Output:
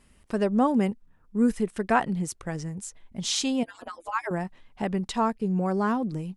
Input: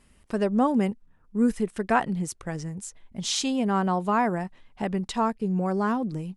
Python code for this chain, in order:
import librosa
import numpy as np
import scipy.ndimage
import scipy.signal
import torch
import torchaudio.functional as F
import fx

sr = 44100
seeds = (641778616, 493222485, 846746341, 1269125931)

y = fx.hpss_only(x, sr, part='percussive', at=(3.63, 4.31))